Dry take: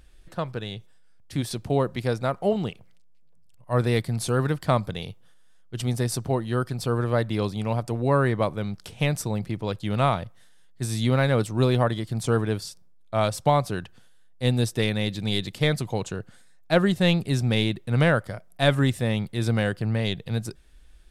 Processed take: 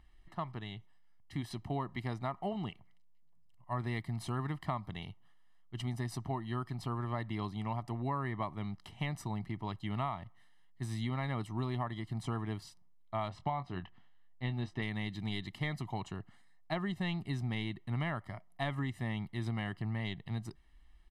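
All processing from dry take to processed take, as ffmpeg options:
-filter_complex "[0:a]asettb=1/sr,asplit=3[s0][s1][s2];[s0]atrim=end=13.284[s3];[s1]atrim=start=13.28:end=14.82,asetpts=PTS-STARTPTS,afade=t=in:d=0.004:c=qsin,afade=t=out:st=1.536:d=0.004:c=qsin,lowpass=3800,asplit=2[s4][s5];[s5]adelay=22,volume=0.299[s6];[s4][s6]amix=inputs=2:normalize=0,atrim=end_sample=67914[s7];[s2]atrim=start=14.816[s8];[s3][s7]acrossfade=d=0.004:c1=hsin:c2=qsin[s9];[s9][s8]acrossfade=d=0.004:c1=qsin:c2=hsin,bass=f=250:g=-6,treble=f=4000:g=-13,aecho=1:1:1:0.88,acompressor=threshold=0.0631:ratio=6,volume=0.398"

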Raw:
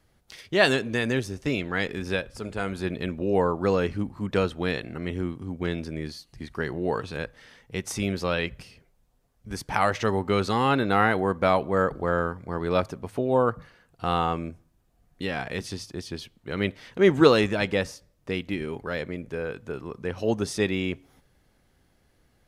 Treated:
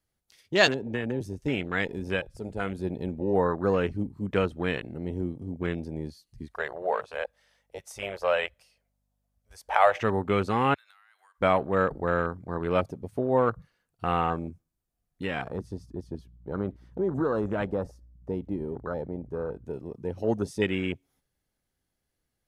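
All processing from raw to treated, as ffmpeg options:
-filter_complex "[0:a]asettb=1/sr,asplit=3[s0][s1][s2];[s0]atrim=end=0.674[s3];[s1]atrim=start=0.67:end=1.21,asetpts=PTS-STARTPTS,afade=t=in:d=0.004:c=qsin,afade=t=out:st=0.536:d=0.004:c=qsin,acrossover=split=290|1900[s4][s5][s6];[s4]acompressor=threshold=0.0316:ratio=4[s7];[s5]acompressor=threshold=0.0398:ratio=4[s8];[s6]acompressor=threshold=0.0141:ratio=4[s9];[s7][s8][s9]amix=inputs=3:normalize=0,equalizer=f=7600:t=o:w=2.2:g=-8.5[s10];[s2]atrim=start=1.206[s11];[s3][s10]acrossfade=d=0.004:c1=hsin:c2=qsin[s12];[s12][s11]acrossfade=d=0.004:c1=qsin:c2=hsin,asettb=1/sr,asplit=3[s13][s14][s15];[s13]atrim=end=6.484[s16];[s14]atrim=start=6.48:end=10.01,asetpts=PTS-STARTPTS,afade=t=in:d=0.004:c=qsin,afade=t=out:st=3.526:d=0.004:c=qsin,lowshelf=f=400:t=q:w=3:g=-13.5,aeval=exprs='val(0)+0.00112*(sin(2*PI*50*n/s)+sin(2*PI*2*50*n/s)/2+sin(2*PI*3*50*n/s)/3+sin(2*PI*4*50*n/s)/4+sin(2*PI*5*50*n/s)/5)':c=same[s17];[s15]atrim=start=10.006[s18];[s16][s17]acrossfade=d=0.004:c1=hsin:c2=qsin[s19];[s19][s18]acrossfade=d=0.004:c1=qsin:c2=hsin,asettb=1/sr,asplit=3[s20][s21][s22];[s20]atrim=end=10.744[s23];[s21]atrim=start=10.74:end=11.41,asetpts=PTS-STARTPTS,afade=t=in:d=0.004:c=qsin,afade=t=out:st=0.666:d=0.004:c=qsin,highpass=f=1200:w=0.5412,highpass=f=1200:w=1.3066,acompressor=threshold=0.0126:ratio=20:attack=3.2:release=140:knee=1:detection=peak[s24];[s22]atrim=start=11.406[s25];[s23][s24]acrossfade=d=0.004:c1=hsin:c2=qsin[s26];[s26][s25]acrossfade=d=0.004:c1=qsin:c2=hsin,asettb=1/sr,asplit=3[s27][s28][s29];[s27]atrim=end=15.494[s30];[s28]atrim=start=15.49:end=19.66,asetpts=PTS-STARTPTS,afade=t=in:d=0.004:c=qsin,afade=t=out:st=4.166:d=0.004:c=qsin,highshelf=f=1700:t=q:w=1.5:g=-9,acompressor=threshold=0.0794:ratio=4:attack=3.2:release=140:knee=1:detection=peak,aeval=exprs='val(0)+0.00355*(sin(2*PI*60*n/s)+sin(2*PI*2*60*n/s)/2+sin(2*PI*3*60*n/s)/3+sin(2*PI*4*60*n/s)/4+sin(2*PI*5*60*n/s)/5)':c=same[s31];[s29]atrim=start=19.656[s32];[s30][s31]acrossfade=d=0.004:c1=hsin:c2=qsin[s33];[s33][s32]acrossfade=d=0.004:c1=qsin:c2=hsin,afwtdn=0.02,highshelf=f=4900:g=10.5,volume=0.841"

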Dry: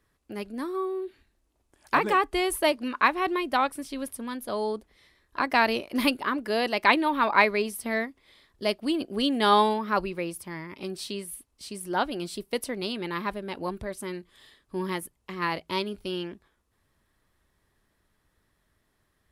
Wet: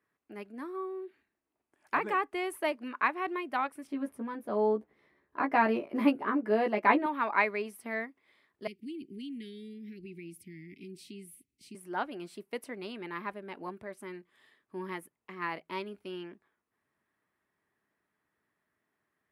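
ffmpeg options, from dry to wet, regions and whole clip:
-filter_complex "[0:a]asettb=1/sr,asplit=3[s0][s1][s2];[s0]atrim=end=3.874[s3];[s1]atrim=start=3.87:end=7.06,asetpts=PTS-STARTPTS,afade=t=in:d=0.004:c=qsin,afade=t=out:st=3.186:d=0.004:c=qsin,tiltshelf=f=1400:g=7.5,asplit=2[s4][s5];[s5]adelay=14,volume=0.631[s6];[s4][s6]amix=inputs=2:normalize=0,atrim=end_sample=140679[s7];[s2]atrim=start=7.056[s8];[s3][s7]acrossfade=d=0.004:c1=hsin:c2=qsin[s9];[s9][s8]acrossfade=d=0.004:c1=qsin:c2=hsin,asettb=1/sr,asplit=3[s10][s11][s12];[s10]atrim=end=8.674[s13];[s11]atrim=start=8.67:end=11.75,asetpts=PTS-STARTPTS,afade=t=in:d=0.004:c=qsin,afade=t=out:st=3.076:d=0.004:c=qsin,bass=f=250:g=9,treble=f=4000:g=2,acompressor=threshold=0.0224:ratio=2.5:attack=3.2:release=140:knee=1:detection=peak,asuperstop=centerf=910:order=12:qfactor=0.55[s14];[s12]atrim=start=11.746[s15];[s13][s14]acrossfade=d=0.004:c1=hsin:c2=qsin[s16];[s16][s15]acrossfade=d=0.004:c1=qsin:c2=hsin,highpass=190,highshelf=f=2900:t=q:w=1.5:g=-7,bandreject=f=530:w=12,volume=0.422"

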